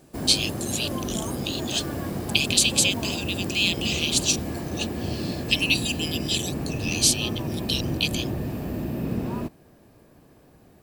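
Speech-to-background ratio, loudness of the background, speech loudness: 6.0 dB, −30.5 LKFS, −24.5 LKFS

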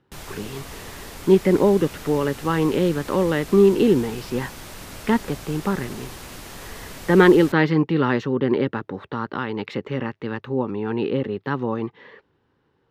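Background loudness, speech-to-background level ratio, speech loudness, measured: −38.0 LKFS, 17.0 dB, −21.0 LKFS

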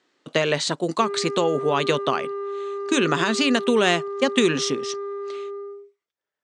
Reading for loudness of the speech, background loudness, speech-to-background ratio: −22.5 LKFS, −30.5 LKFS, 8.0 dB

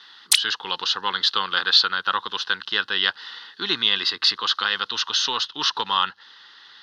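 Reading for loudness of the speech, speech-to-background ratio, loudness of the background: −21.5 LKFS, −1.5 dB, −20.0 LKFS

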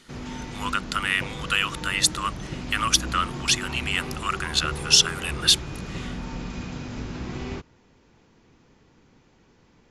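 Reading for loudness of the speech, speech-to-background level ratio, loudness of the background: −23.0 LKFS, 11.5 dB, −34.5 LKFS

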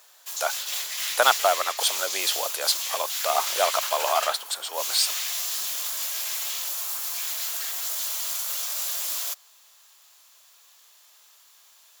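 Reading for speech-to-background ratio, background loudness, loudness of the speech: 1.5 dB, −27.0 LKFS, −25.5 LKFS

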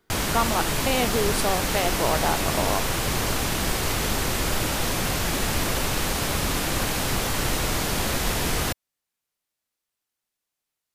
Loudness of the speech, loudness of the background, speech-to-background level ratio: −27.0 LKFS, −24.5 LKFS, −2.5 dB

